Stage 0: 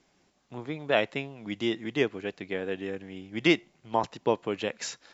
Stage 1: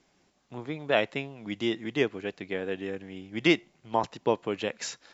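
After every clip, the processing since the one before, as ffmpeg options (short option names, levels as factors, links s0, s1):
-af anull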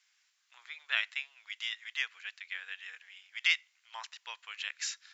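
-af "highpass=f=1500:w=0.5412,highpass=f=1500:w=1.3066"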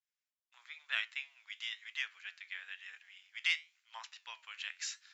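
-filter_complex "[0:a]agate=range=0.0224:threshold=0.00112:ratio=3:detection=peak,acrossover=split=570[s0][s1];[s1]acontrast=75[s2];[s0][s2]amix=inputs=2:normalize=0,flanger=delay=8.5:depth=4.9:regen=76:speed=1:shape=triangular,volume=0.473"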